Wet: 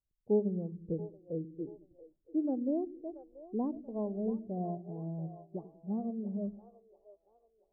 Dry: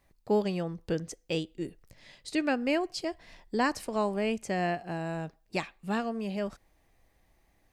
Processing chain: Gaussian blur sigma 11 samples; split-band echo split 400 Hz, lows 97 ms, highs 0.682 s, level -8.5 dB; spectral expander 1.5:1

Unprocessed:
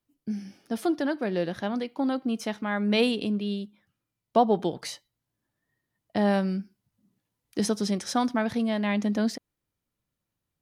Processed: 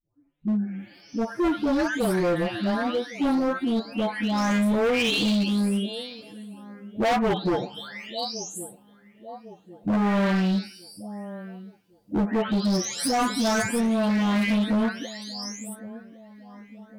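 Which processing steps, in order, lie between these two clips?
spectral delay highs late, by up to 0.495 s; time stretch by phase-locked vocoder 1.6×; dark delay 1.107 s, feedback 45%, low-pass 2000 Hz, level -20 dB; overloaded stage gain 28 dB; gain +8 dB

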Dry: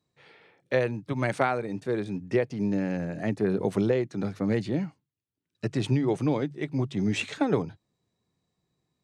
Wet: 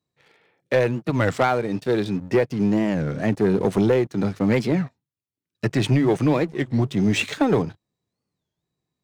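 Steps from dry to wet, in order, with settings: 1.71–2.11 spectral gain 2500–5900 Hz +6 dB; 4.36–6.57 dynamic EQ 1800 Hz, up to +5 dB, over -50 dBFS, Q 1.6; sample leveller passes 2; record warp 33 1/3 rpm, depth 250 cents

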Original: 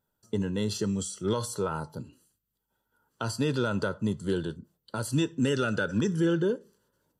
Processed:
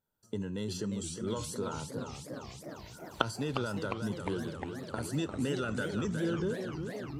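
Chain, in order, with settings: recorder AGC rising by 18 dB/s; warbling echo 0.356 s, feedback 77%, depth 203 cents, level -7.5 dB; gain -7.5 dB

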